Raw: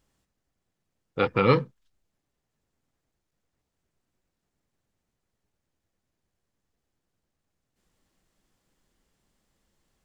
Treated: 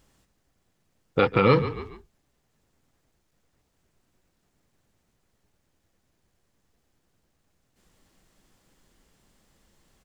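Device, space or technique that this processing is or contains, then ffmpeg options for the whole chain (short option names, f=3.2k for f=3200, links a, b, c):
stacked limiters: -filter_complex "[0:a]asplit=4[a][b][c][d];[b]adelay=141,afreqshift=-32,volume=-18dB[e];[c]adelay=282,afreqshift=-64,volume=-26.6dB[f];[d]adelay=423,afreqshift=-96,volume=-35.3dB[g];[a][e][f][g]amix=inputs=4:normalize=0,alimiter=limit=-10.5dB:level=0:latency=1:release=279,alimiter=limit=-15.5dB:level=0:latency=1:release=162,volume=9dB"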